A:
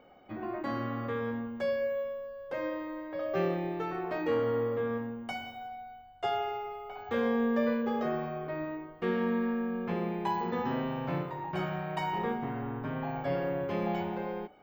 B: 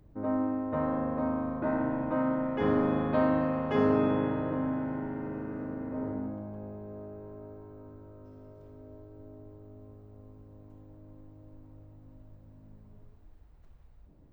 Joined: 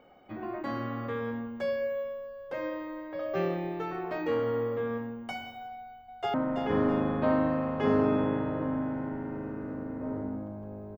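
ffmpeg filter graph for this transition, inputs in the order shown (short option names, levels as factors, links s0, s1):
-filter_complex "[0:a]apad=whole_dur=10.97,atrim=end=10.97,atrim=end=6.342[s0];[1:a]atrim=start=2.248:end=6.88[s1];[s0][s1]acrossfade=d=0.004:c1=hsin:c2=hsin,asplit=2[s2][s3];[s3]afade=t=in:st=5.75:d=0.01,afade=t=out:st=6.34:d=0.01,aecho=0:1:330|660|990|1320:0.473151|0.165603|0.057961|0.0202864[s4];[s2][s4]amix=inputs=2:normalize=0"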